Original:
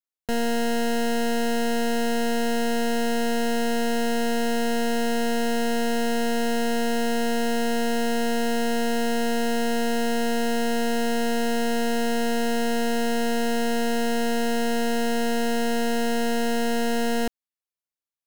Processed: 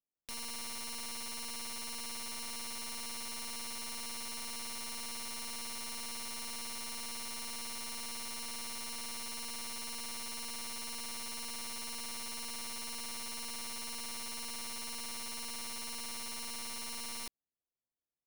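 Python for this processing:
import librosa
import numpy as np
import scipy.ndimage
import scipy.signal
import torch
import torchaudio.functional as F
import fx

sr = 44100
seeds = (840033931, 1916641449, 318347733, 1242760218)

y = scipy.ndimage.gaussian_filter1d(x, 10.0, mode='constant')
y = (np.mod(10.0 ** (38.0 / 20.0) * y + 1.0, 2.0) - 1.0) / 10.0 ** (38.0 / 20.0)
y = y * 10.0 ** (3.0 / 20.0)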